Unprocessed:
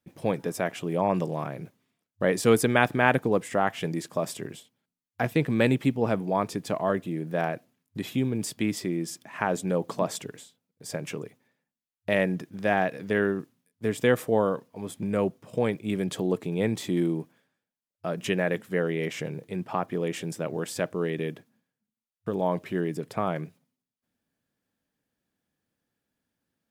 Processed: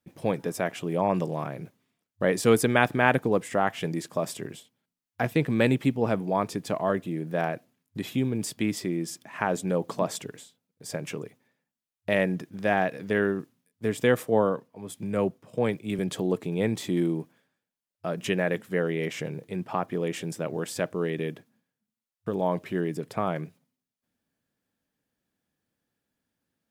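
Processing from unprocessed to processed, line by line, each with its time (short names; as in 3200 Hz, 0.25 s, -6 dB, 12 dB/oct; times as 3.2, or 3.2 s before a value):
14.23–15.99 three-band expander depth 40%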